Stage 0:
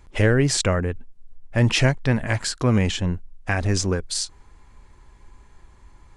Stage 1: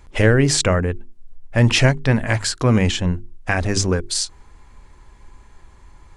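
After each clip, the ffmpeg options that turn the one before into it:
-af "bandreject=f=50:t=h:w=6,bandreject=f=100:t=h:w=6,bandreject=f=150:t=h:w=6,bandreject=f=200:t=h:w=6,bandreject=f=250:t=h:w=6,bandreject=f=300:t=h:w=6,bandreject=f=350:t=h:w=6,bandreject=f=400:t=h:w=6,volume=4dB"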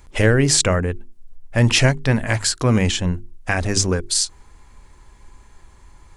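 -af "highshelf=f=6.2k:g=8,volume=-1dB"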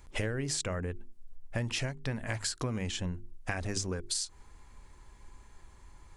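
-af "acompressor=threshold=-23dB:ratio=10,volume=-7dB"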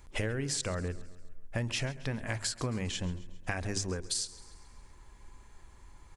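-af "aecho=1:1:135|270|405|540|675:0.119|0.0654|0.036|0.0198|0.0109"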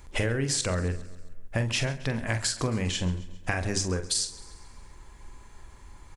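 -filter_complex "[0:a]asplit=2[a][b];[b]adelay=44,volume=-9.5dB[c];[a][c]amix=inputs=2:normalize=0,volume=5.5dB"

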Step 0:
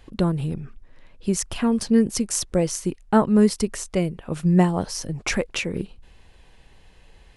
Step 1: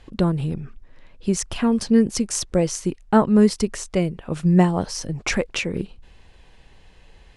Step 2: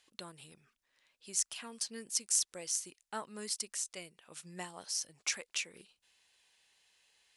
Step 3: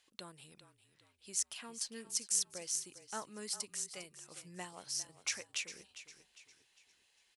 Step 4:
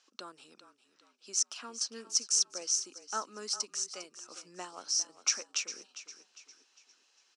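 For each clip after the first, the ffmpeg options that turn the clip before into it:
-af "lowpass=8.7k,volume=1.5dB"
-af "aderivative,volume=-3.5dB"
-filter_complex "[0:a]asplit=5[a][b][c][d][e];[b]adelay=403,afreqshift=-34,volume=-13.5dB[f];[c]adelay=806,afreqshift=-68,volume=-21.2dB[g];[d]adelay=1209,afreqshift=-102,volume=-29dB[h];[e]adelay=1612,afreqshift=-136,volume=-36.7dB[i];[a][f][g][h][i]amix=inputs=5:normalize=0,volume=-2.5dB"
-af "highpass=f=250:w=0.5412,highpass=f=250:w=1.3066,equalizer=f=260:t=q:w=4:g=4,equalizer=f=1.3k:t=q:w=4:g=9,equalizer=f=2k:t=q:w=4:g=-8,equalizer=f=3.4k:t=q:w=4:g=-4,equalizer=f=5.7k:t=q:w=4:g=9,lowpass=f=7.3k:w=0.5412,lowpass=f=7.3k:w=1.3066,volume=3.5dB"

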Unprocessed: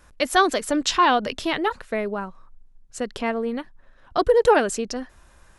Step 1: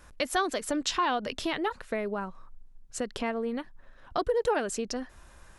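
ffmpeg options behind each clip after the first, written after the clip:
-af "acompressor=threshold=-32dB:ratio=2"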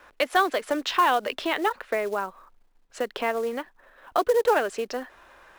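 -filter_complex "[0:a]acrossover=split=330 3800:gain=0.1 1 0.126[a][b][c];[a][b][c]amix=inputs=3:normalize=0,acrusher=bits=5:mode=log:mix=0:aa=0.000001,volume=7dB"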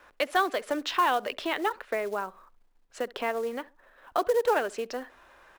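-filter_complex "[0:a]asplit=2[a][b];[b]adelay=68,lowpass=f=1.1k:p=1,volume=-21dB,asplit=2[c][d];[d]adelay=68,lowpass=f=1.1k:p=1,volume=0.32[e];[a][c][e]amix=inputs=3:normalize=0,volume=-3.5dB"

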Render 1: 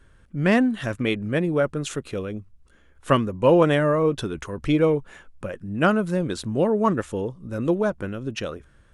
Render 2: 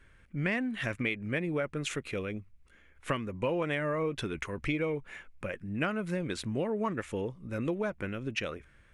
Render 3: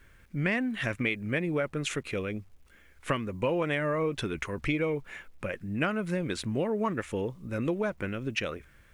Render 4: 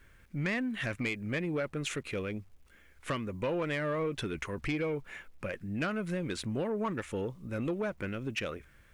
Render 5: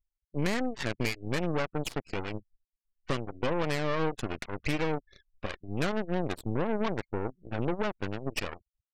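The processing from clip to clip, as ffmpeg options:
-af "equalizer=f=2.2k:w=2.1:g=12.5,acompressor=threshold=-22dB:ratio=6,volume=-6dB"
-af "acrusher=bits=11:mix=0:aa=0.000001,volume=2.5dB"
-af "asoftclip=type=tanh:threshold=-23dB,volume=-2dB"
-af "afftfilt=real='re*gte(hypot(re,im),0.0178)':imag='im*gte(hypot(re,im),0.0178)':win_size=1024:overlap=0.75,aeval=exprs='0.075*(cos(1*acos(clip(val(0)/0.075,-1,1)))-cos(1*PI/2))+0.0266*(cos(4*acos(clip(val(0)/0.075,-1,1)))-cos(4*PI/2))+0.00531*(cos(5*acos(clip(val(0)/0.075,-1,1)))-cos(5*PI/2))+0.0168*(cos(7*acos(clip(val(0)/0.075,-1,1)))-cos(7*PI/2))':c=same"

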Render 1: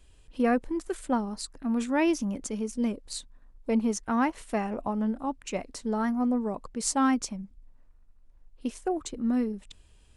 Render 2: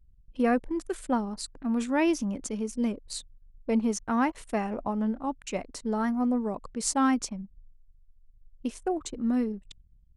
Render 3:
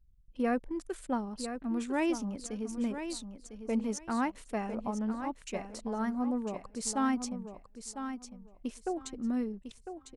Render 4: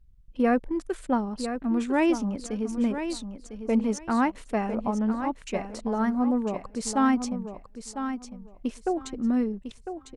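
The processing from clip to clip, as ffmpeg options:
-af "anlmdn=0.00398"
-af "aecho=1:1:1002|2004|3006:0.355|0.0674|0.0128,volume=-5.5dB"
-af "highshelf=f=5.2k:g=-8.5,volume=7.5dB"

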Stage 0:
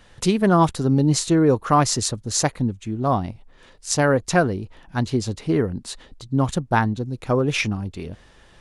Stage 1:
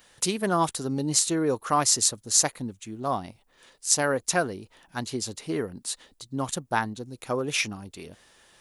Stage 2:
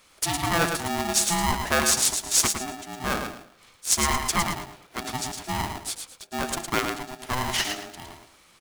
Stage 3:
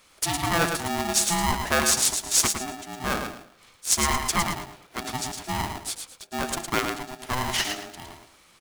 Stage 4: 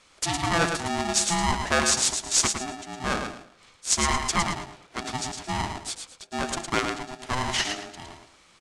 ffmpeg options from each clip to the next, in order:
-af "aemphasis=mode=production:type=bsi,volume=-5.5dB"
-af "bandreject=f=60:t=h:w=6,bandreject=f=120:t=h:w=6,bandreject=f=180:t=h:w=6,bandreject=f=240:t=h:w=6,bandreject=f=300:t=h:w=6,bandreject=f=360:t=h:w=6,aecho=1:1:110|220|330|440:0.501|0.14|0.0393|0.011,aeval=exprs='val(0)*sgn(sin(2*PI*510*n/s))':c=same"
-af anull
-af "lowpass=f=8.7k:w=0.5412,lowpass=f=8.7k:w=1.3066"

